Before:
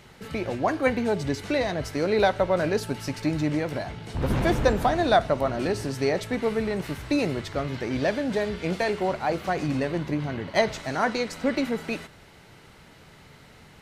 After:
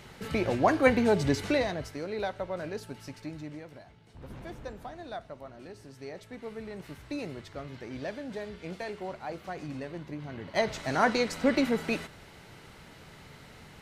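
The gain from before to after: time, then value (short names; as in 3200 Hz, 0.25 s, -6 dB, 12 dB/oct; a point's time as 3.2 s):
1.43 s +1 dB
2.06 s -12 dB
3.07 s -12 dB
3.9 s -20 dB
5.75 s -20 dB
6.94 s -12 dB
10.17 s -12 dB
10.97 s 0 dB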